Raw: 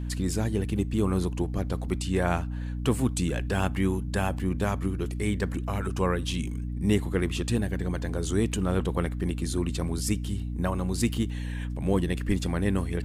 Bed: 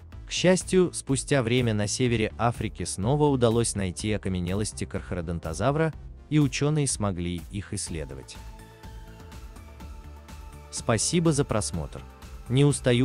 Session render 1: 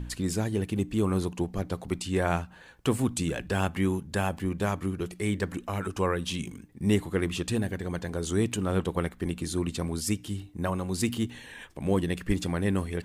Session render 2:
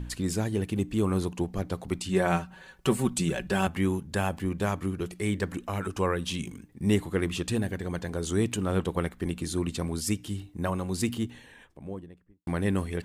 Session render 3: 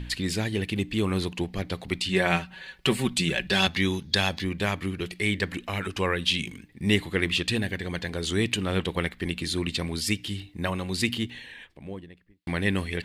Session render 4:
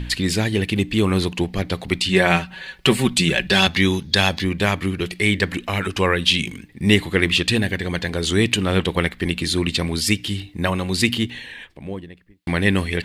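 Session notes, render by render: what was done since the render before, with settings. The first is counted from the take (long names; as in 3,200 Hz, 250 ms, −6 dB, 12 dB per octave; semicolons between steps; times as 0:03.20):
hum removal 60 Hz, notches 5
0:02.09–0:03.67: comb filter 5.3 ms, depth 64%; 0:10.82–0:12.47: fade out and dull
flat-topped bell 2,900 Hz +11 dB; 0:03.51–0:04.44: gain on a spectral selection 3,300–6,800 Hz +10 dB
level +7.5 dB; brickwall limiter −1 dBFS, peak gain reduction 2.5 dB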